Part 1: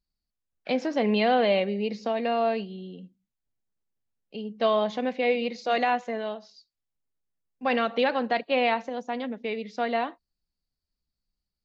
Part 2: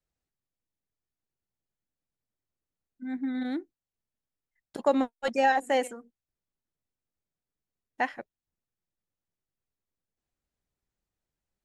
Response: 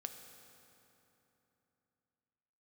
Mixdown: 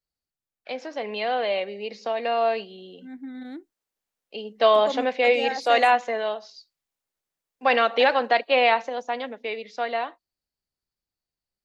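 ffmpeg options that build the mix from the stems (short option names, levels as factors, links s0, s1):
-filter_complex "[0:a]highpass=460,dynaudnorm=f=220:g=21:m=3.76,volume=0.668[s0];[1:a]volume=0.501[s1];[s0][s1]amix=inputs=2:normalize=0"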